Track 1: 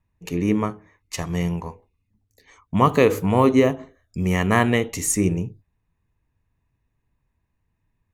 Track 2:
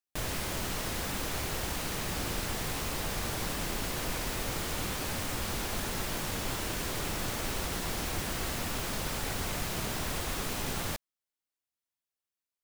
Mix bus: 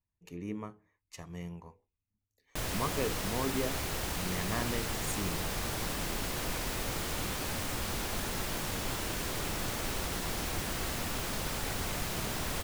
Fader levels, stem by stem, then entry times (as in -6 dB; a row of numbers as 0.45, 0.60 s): -18.0, -1.0 dB; 0.00, 2.40 s